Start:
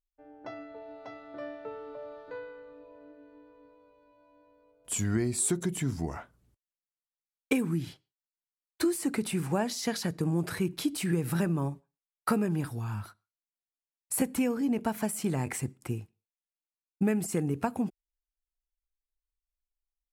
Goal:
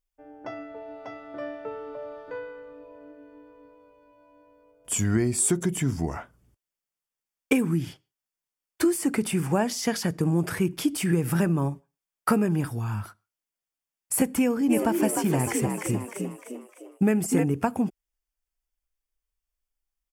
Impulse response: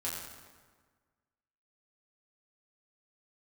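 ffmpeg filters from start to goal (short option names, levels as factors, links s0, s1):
-filter_complex "[0:a]bandreject=f=4000:w=5.5,asplit=3[s0][s1][s2];[s0]afade=t=out:st=14.69:d=0.02[s3];[s1]asplit=7[s4][s5][s6][s7][s8][s9][s10];[s5]adelay=304,afreqshift=63,volume=0.631[s11];[s6]adelay=608,afreqshift=126,volume=0.279[s12];[s7]adelay=912,afreqshift=189,volume=0.122[s13];[s8]adelay=1216,afreqshift=252,volume=0.0537[s14];[s9]adelay=1520,afreqshift=315,volume=0.0237[s15];[s10]adelay=1824,afreqshift=378,volume=0.0104[s16];[s4][s11][s12][s13][s14][s15][s16]amix=inputs=7:normalize=0,afade=t=in:st=14.69:d=0.02,afade=t=out:st=17.43:d=0.02[s17];[s2]afade=t=in:st=17.43:d=0.02[s18];[s3][s17][s18]amix=inputs=3:normalize=0,volume=1.78"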